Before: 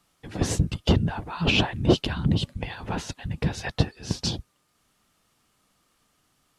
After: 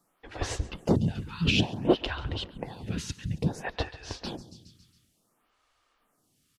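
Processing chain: feedback delay 138 ms, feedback 53%, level -17 dB; lamp-driven phase shifter 0.57 Hz

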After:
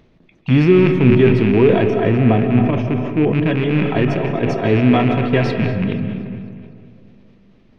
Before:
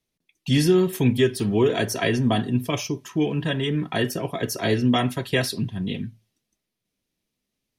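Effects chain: rattle on loud lows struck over -25 dBFS, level -14 dBFS; 1.90–3.34 s: treble shelf 3.1 kHz -11 dB; upward compressor, threshold -40 dBFS; tape spacing loss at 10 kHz 43 dB; feedback echo behind a high-pass 245 ms, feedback 52%, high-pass 1.7 kHz, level -16 dB; reverberation RT60 2.4 s, pre-delay 115 ms, DRR 6.5 dB; decay stretcher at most 45 dB/s; trim +7.5 dB

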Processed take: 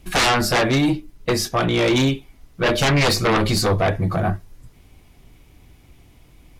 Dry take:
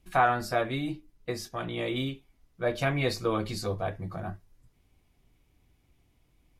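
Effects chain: sine folder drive 15 dB, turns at -11.5 dBFS; trim -2 dB

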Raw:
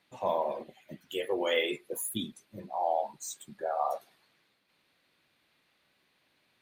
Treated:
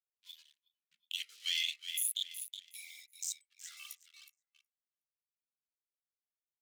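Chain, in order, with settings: local Wiener filter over 25 samples; spectral noise reduction 20 dB; feedback delay 368 ms, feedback 35%, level -16 dB; gate -57 dBFS, range -10 dB; waveshaping leveller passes 2; in parallel at -2.5 dB: compression, threshold -35 dBFS, peak gain reduction 13.5 dB; on the sum: inverse Chebyshev high-pass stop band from 860 Hz, stop band 60 dB; level rider gain up to 9 dB; on a send at -10 dB: distance through air 230 m + reverberation RT60 0.35 s, pre-delay 3 ms; on the sum: peak limiter -15.5 dBFS, peak gain reduction 8 dB; trim -7 dB

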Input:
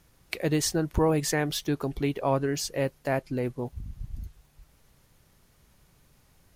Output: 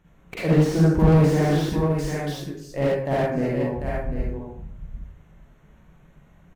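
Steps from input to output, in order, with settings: local Wiener filter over 9 samples; 1.69–2.72 s: amplifier tone stack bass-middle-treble 10-0-1; delay 746 ms -8.5 dB; reverberation RT60 0.65 s, pre-delay 37 ms, DRR -6.5 dB; slew-rate limiter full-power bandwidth 70 Hz

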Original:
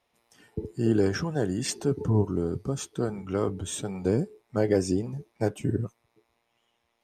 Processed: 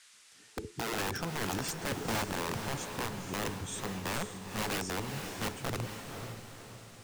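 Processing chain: integer overflow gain 21.5 dB; echo that smears into a reverb 494 ms, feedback 46%, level -6 dB; band noise 1.2–9.4 kHz -53 dBFS; trim -6.5 dB

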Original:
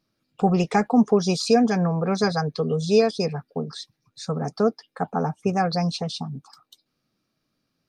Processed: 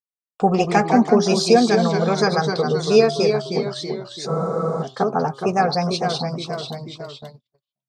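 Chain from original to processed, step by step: tone controls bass -7 dB, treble -1 dB; de-hum 136.5 Hz, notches 11; ever faster or slower copies 125 ms, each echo -1 st, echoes 3, each echo -6 dB; gate -42 dBFS, range -45 dB; spectral freeze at 4.30 s, 0.52 s; trim +5 dB

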